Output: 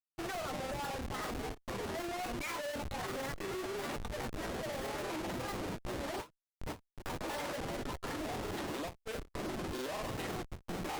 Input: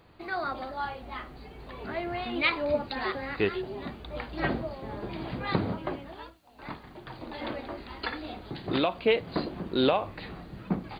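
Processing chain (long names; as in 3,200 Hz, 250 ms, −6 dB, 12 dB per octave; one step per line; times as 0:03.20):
noise gate −43 dBFS, range −7 dB
high-pass filter 66 Hz 6 dB per octave
three-way crossover with the lows and the highs turned down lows −18 dB, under 310 Hz, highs −17 dB, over 3,800 Hz
reversed playback
downward compressor 12 to 1, threshold −39 dBFS, peak gain reduction 19 dB
reversed playback
brickwall limiter −37 dBFS, peak gain reduction 8 dB
square-wave tremolo 0.83 Hz, depth 65%, duty 30%
comparator with hysteresis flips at −56 dBFS
granular cloud, spray 22 ms, pitch spread up and down by 0 semitones
every ending faded ahead of time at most 290 dB per second
level +13.5 dB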